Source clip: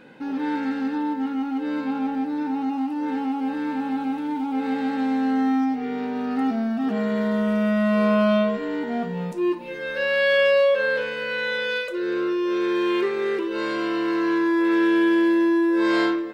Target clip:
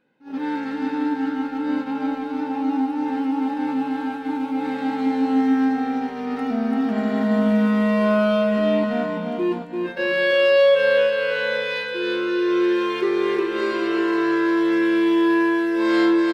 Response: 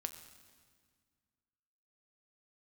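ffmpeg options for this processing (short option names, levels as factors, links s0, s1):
-af "agate=range=0.1:threshold=0.0447:ratio=16:detection=peak,aecho=1:1:340|595|786.2|929.7|1037:0.631|0.398|0.251|0.158|0.1"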